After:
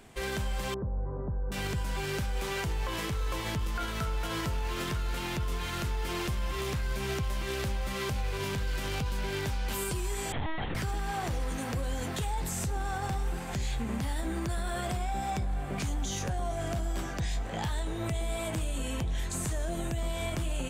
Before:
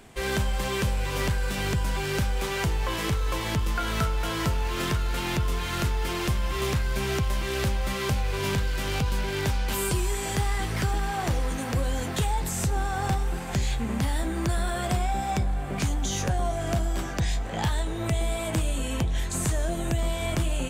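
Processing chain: limiter -20.5 dBFS, peak gain reduction 5 dB; 0.74–1.52 Gaussian blur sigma 9.5 samples; 10.32–10.75 LPC vocoder at 8 kHz pitch kept; gain -3.5 dB

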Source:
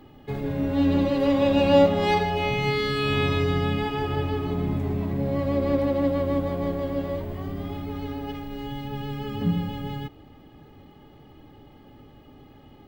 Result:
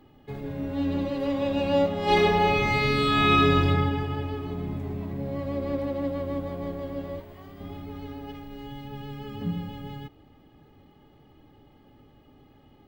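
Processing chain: 2.03–3.68 reverb throw, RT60 1.5 s, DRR -9.5 dB; 7.2–7.61 low shelf 490 Hz -9.5 dB; gain -6 dB

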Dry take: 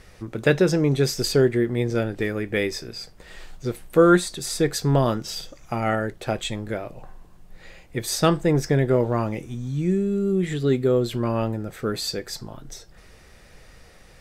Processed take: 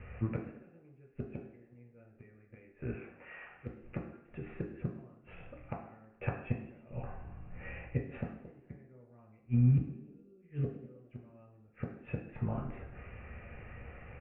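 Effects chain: steep low-pass 2700 Hz 96 dB/oct; vocal rider within 4 dB 0.5 s; flipped gate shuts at -18 dBFS, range -35 dB; 2.95–3.67 band-pass 1600 Hz, Q 0.59; frequency-shifting echo 0.106 s, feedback 63%, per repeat +45 Hz, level -22 dB; reverb RT60 0.65 s, pre-delay 3 ms, DRR -0.5 dB; gain -9 dB

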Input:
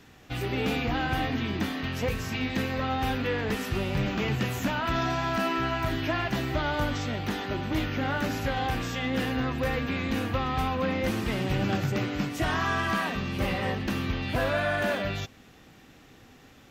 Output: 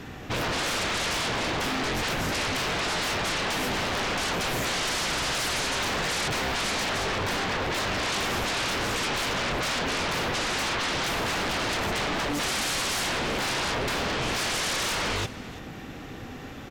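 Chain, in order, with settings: high shelf 3100 Hz -7.5 dB; sine folder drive 19 dB, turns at -16.5 dBFS; echo 0.337 s -17.5 dB; gain -8.5 dB

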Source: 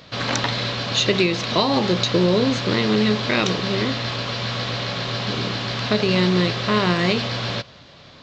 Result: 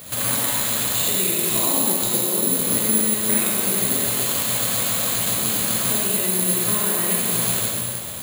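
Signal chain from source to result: compressor 6:1, threshold -30 dBFS, peak gain reduction 15 dB; reverb RT60 2.2 s, pre-delay 30 ms, DRR -5 dB; careless resampling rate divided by 4×, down filtered, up zero stuff

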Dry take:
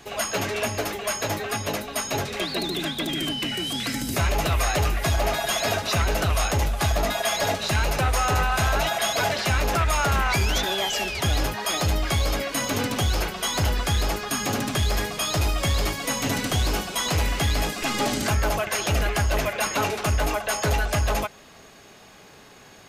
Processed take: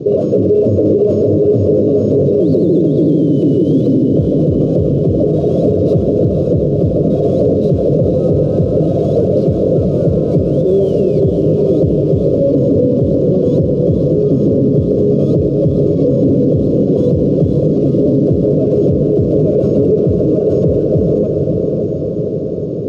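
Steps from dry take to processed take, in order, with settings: CVSD 32 kbps; soft clip -28.5 dBFS, distortion -8 dB; elliptic low-pass 520 Hz, stop band 40 dB; compressor 2.5:1, threshold -36 dBFS, peak gain reduction 4.5 dB; HPF 120 Hz 24 dB/oct; bell 230 Hz -10 dB 0.28 oct; on a send: diffused feedback echo 0.512 s, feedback 68%, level -6.5 dB; on the sum: maximiser +35.5 dB; gain -3 dB

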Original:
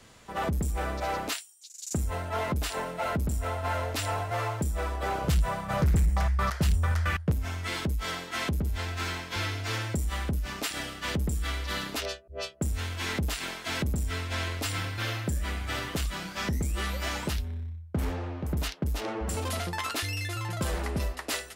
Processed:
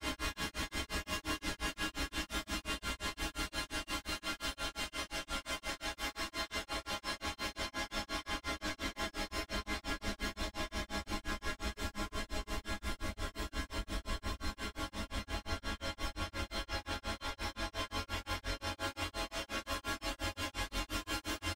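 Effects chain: gate with hold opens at -36 dBFS; comb 2.9 ms, depth 50%; in parallel at +3 dB: negative-ratio compressor -30 dBFS, ratio -1; on the sum: harmoniser -12 st -6 dB, -3 st -8 dB; resonator bank G#3 sus4, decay 0.23 s; Paulstretch 15×, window 1.00 s, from 13.15; hard clip -30.5 dBFS, distortion -28 dB; grains 0.169 s, grains 5.7/s, spray 37 ms, pitch spread up and down by 0 st; gain +3.5 dB

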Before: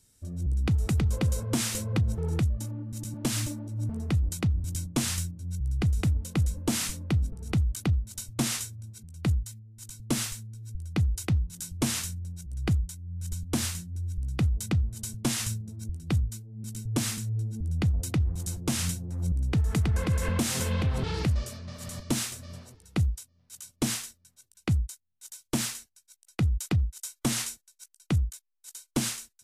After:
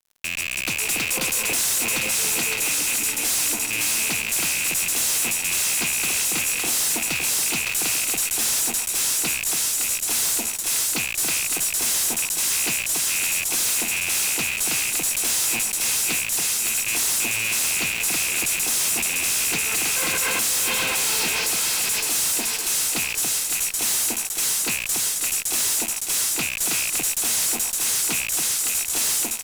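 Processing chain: rattling part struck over -33 dBFS, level -26 dBFS; HPF 160 Hz; tone controls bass -13 dB, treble +2 dB; on a send: echo with dull and thin repeats by turns 0.281 s, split 920 Hz, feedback 74%, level -5 dB; on the sum: AGC gain up to 3 dB; tilt +4 dB/oct; notch comb 590 Hz; fuzz box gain 39 dB, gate -43 dBFS; gain -7.5 dB

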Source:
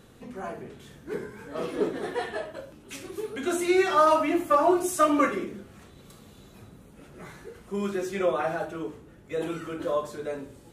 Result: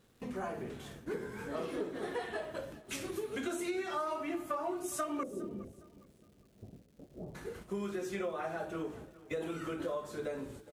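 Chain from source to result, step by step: 5.23–7.35 Chebyshev low-pass 680 Hz, order 4; gate -48 dBFS, range -15 dB; compressor 6:1, threshold -36 dBFS, peak gain reduction 18.5 dB; crackle 460/s -60 dBFS; feedback echo 0.411 s, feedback 32%, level -19 dB; gain +1 dB

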